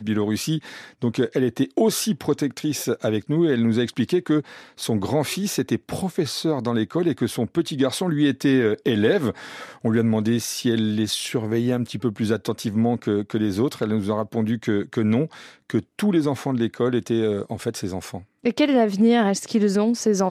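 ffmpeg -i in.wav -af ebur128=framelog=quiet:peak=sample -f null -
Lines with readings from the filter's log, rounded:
Integrated loudness:
  I:         -22.7 LUFS
  Threshold: -32.8 LUFS
Loudness range:
  LRA:         2.4 LU
  Threshold: -43.0 LUFS
  LRA low:   -24.1 LUFS
  LRA high:  -21.7 LUFS
Sample peak:
  Peak:       -7.5 dBFS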